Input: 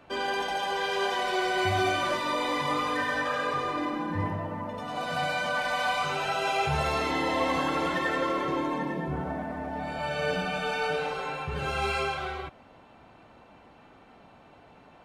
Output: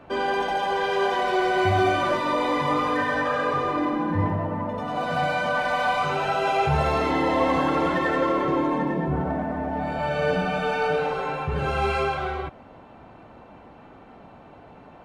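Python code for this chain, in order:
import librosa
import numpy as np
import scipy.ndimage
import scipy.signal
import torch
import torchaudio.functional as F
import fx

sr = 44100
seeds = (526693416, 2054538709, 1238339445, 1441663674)

p1 = fx.high_shelf(x, sr, hz=2200.0, db=-11.5)
p2 = 10.0 ** (-34.5 / 20.0) * np.tanh(p1 / 10.0 ** (-34.5 / 20.0))
p3 = p1 + F.gain(torch.from_numpy(p2), -11.0).numpy()
y = F.gain(torch.from_numpy(p3), 6.0).numpy()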